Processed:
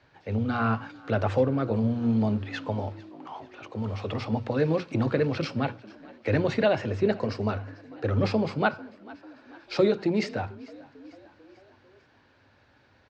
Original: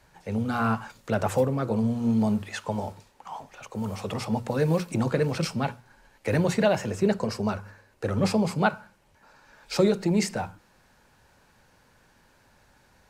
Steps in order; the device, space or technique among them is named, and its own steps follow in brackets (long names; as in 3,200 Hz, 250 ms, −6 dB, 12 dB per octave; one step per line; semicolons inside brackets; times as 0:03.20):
frequency-shifting delay pedal into a guitar cabinet (echo with shifted repeats 445 ms, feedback 56%, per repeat +48 Hz, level −22 dB; loudspeaker in its box 84–4,500 Hz, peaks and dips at 98 Hz +7 dB, 180 Hz −9 dB, 290 Hz +5 dB, 910 Hz −4 dB)